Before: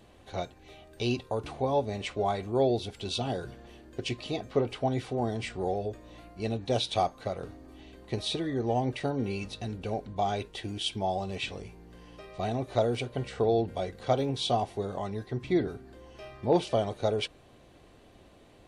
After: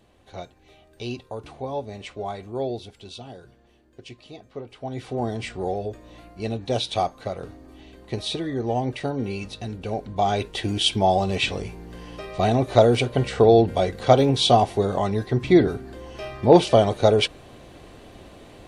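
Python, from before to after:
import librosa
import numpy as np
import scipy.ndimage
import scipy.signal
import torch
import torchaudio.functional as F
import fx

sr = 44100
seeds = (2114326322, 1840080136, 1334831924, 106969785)

y = fx.gain(x, sr, db=fx.line((2.72, -2.5), (3.31, -9.0), (4.69, -9.0), (5.15, 3.5), (9.81, 3.5), (10.7, 11.0)))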